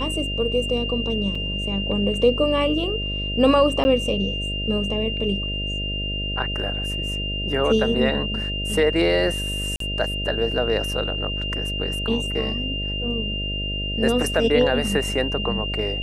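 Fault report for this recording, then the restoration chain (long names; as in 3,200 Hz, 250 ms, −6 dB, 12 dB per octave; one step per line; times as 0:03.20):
mains buzz 50 Hz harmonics 13 −29 dBFS
whistle 2,800 Hz −27 dBFS
0:01.35: drop-out 4.5 ms
0:03.84–0:03.85: drop-out 10 ms
0:09.76–0:09.80: drop-out 43 ms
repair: hum removal 50 Hz, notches 13
notch filter 2,800 Hz, Q 30
repair the gap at 0:01.35, 4.5 ms
repair the gap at 0:03.84, 10 ms
repair the gap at 0:09.76, 43 ms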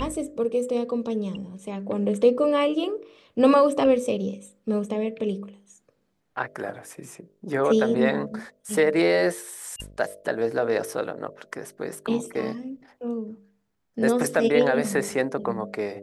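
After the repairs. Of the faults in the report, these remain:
none of them is left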